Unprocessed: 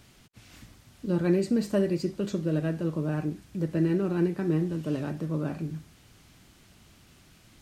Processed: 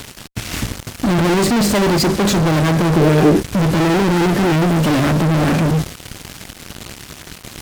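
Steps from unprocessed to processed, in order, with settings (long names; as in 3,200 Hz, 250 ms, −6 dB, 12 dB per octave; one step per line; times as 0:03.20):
fuzz pedal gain 45 dB, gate −54 dBFS
0:02.96–0:03.43: parametric band 410 Hz +11.5 dB 0.77 octaves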